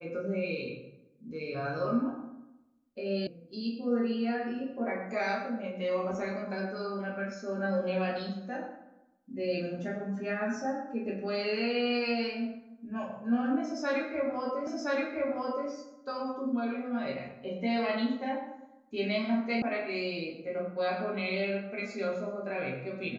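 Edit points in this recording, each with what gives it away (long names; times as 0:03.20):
0:03.27: cut off before it has died away
0:14.67: the same again, the last 1.02 s
0:19.62: cut off before it has died away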